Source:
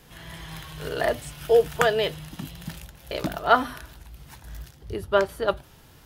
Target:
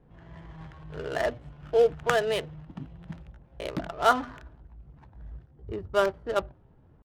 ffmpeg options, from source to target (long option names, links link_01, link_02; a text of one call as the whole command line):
ffmpeg -i in.wav -af "adynamicsmooth=sensitivity=4:basefreq=710,atempo=0.86,volume=-3.5dB" out.wav